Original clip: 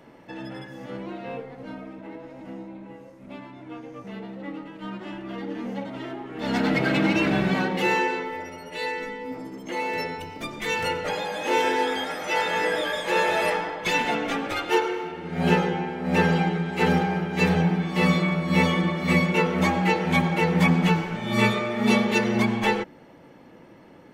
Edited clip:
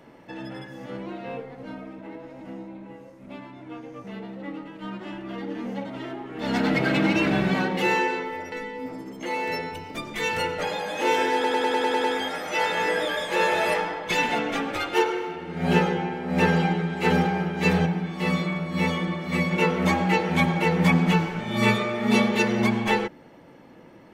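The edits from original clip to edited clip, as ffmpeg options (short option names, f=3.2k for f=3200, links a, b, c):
-filter_complex "[0:a]asplit=11[a][b][c][d][e][f][g][h][i][j][k];[a]atrim=end=8.522[l];[b]atrim=start=8.978:end=11.902[m];[c]atrim=start=11.798:end=11.902[n];[d]atrim=start=11.798:end=11.902[o];[e]atrim=start=11.798:end=11.902[p];[f]atrim=start=11.798:end=11.902[q];[g]atrim=start=11.798:end=11.902[r];[h]atrim=start=11.798:end=11.902[s];[i]atrim=start=11.798:end=17.622[t];[j]atrim=start=17.618:end=19.272,asetpts=PTS-STARTPTS,volume=-4dB[u];[k]atrim=start=19.268[v];[l][m]acrossfade=d=0.004:c1=hsin:c2=hsin[w];[w][n]acrossfade=d=0.004:c1=hsin:c2=hsin[x];[x][o]acrossfade=d=0.004:c1=hsin:c2=hsin[y];[y][p]acrossfade=d=0.004:c1=hsin:c2=hsin[z];[z][q]acrossfade=d=0.004:c1=hsin:c2=hsin[aa];[aa][r]acrossfade=d=0.004:c1=hsin:c2=hsin[ab];[ab][s]acrossfade=d=0.004:c1=hsin:c2=hsin[ac];[ac][t]acrossfade=d=0.004:c1=hsin:c2=hsin[ad];[ad][u]acrossfade=d=0.004:c1=hsin:c2=hsin[ae];[ae][v]acrossfade=d=0.004:c1=hsin:c2=hsin"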